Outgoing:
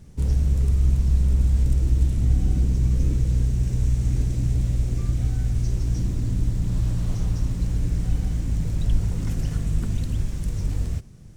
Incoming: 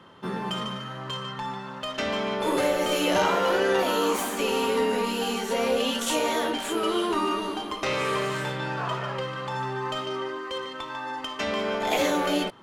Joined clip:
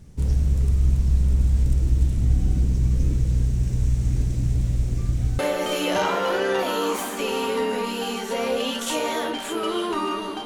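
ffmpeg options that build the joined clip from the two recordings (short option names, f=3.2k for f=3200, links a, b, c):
-filter_complex "[0:a]apad=whole_dur=10.45,atrim=end=10.45,atrim=end=5.392[a];[1:a]atrim=start=2.588:end=7.65[b];[a][b]acrossfade=d=0.004:c1=hsin:c2=hsin"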